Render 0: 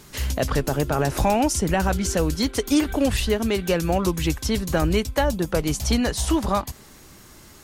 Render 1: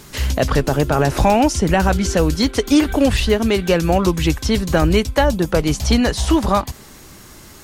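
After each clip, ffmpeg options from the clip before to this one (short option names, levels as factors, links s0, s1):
-filter_complex "[0:a]acrossover=split=6200[s0][s1];[s1]acompressor=threshold=0.01:ratio=4:attack=1:release=60[s2];[s0][s2]amix=inputs=2:normalize=0,volume=2"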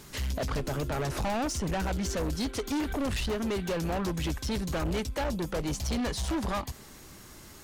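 -af "asoftclip=type=tanh:threshold=0.112,volume=0.398"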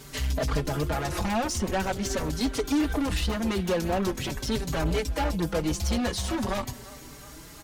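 -filter_complex "[0:a]aecho=1:1:350|700|1050|1400:0.0891|0.0508|0.029|0.0165,asplit=2[s0][s1];[s1]adelay=4.7,afreqshift=0.43[s2];[s0][s2]amix=inputs=2:normalize=1,volume=2.11"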